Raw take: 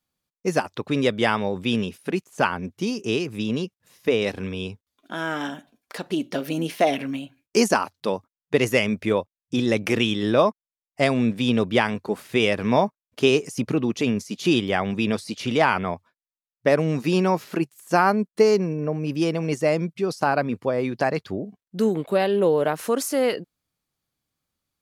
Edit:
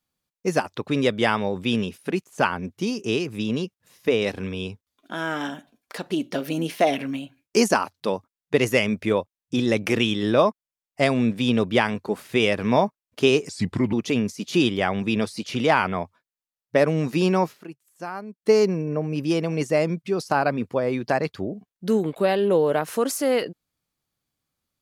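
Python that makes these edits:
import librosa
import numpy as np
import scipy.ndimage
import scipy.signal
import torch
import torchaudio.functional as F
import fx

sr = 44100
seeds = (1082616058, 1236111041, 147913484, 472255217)

y = fx.edit(x, sr, fx.speed_span(start_s=13.49, length_s=0.35, speed=0.8),
    fx.fade_down_up(start_s=17.36, length_s=1.06, db=-15.0, fade_s=0.17, curve='qua'), tone=tone)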